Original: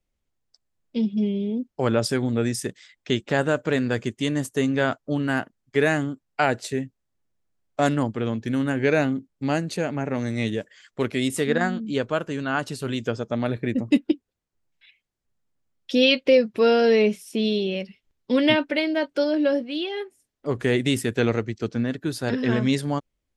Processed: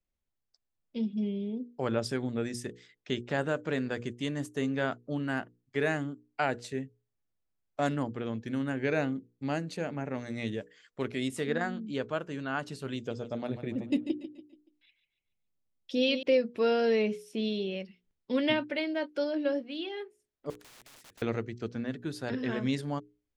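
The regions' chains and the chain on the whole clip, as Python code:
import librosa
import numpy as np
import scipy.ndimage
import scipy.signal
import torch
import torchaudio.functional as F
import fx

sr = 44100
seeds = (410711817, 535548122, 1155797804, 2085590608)

y = fx.chain(x, sr, fx.peak_eq(hz=1600.0, db=-7.0, octaves=1.2),
    fx.echo_feedback(ms=143, feedback_pct=40, wet_db=-11), at=(12.96, 16.23))
y = fx.chain(y, sr, fx.overflow_wrap(gain_db=24.5),
    fx.spectral_comp(ratio=4.0), at=(20.5, 21.22))
y = fx.high_shelf(y, sr, hz=9500.0, db=-10.0)
y = fx.hum_notches(y, sr, base_hz=60, count=8)
y = y * 10.0 ** (-8.0 / 20.0)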